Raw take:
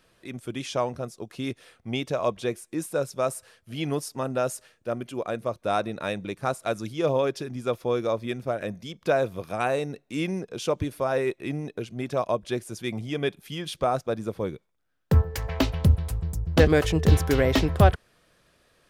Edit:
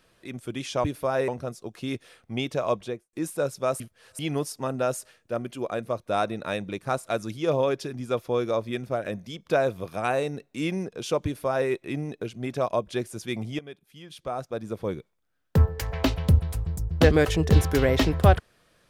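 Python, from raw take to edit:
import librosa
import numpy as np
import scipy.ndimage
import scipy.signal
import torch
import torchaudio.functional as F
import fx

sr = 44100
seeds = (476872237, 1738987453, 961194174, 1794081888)

y = fx.studio_fade_out(x, sr, start_s=2.31, length_s=0.38)
y = fx.edit(y, sr, fx.reverse_span(start_s=3.36, length_s=0.39),
    fx.duplicate(start_s=10.81, length_s=0.44, to_s=0.84),
    fx.fade_in_from(start_s=13.15, length_s=1.3, curve='qua', floor_db=-16.0), tone=tone)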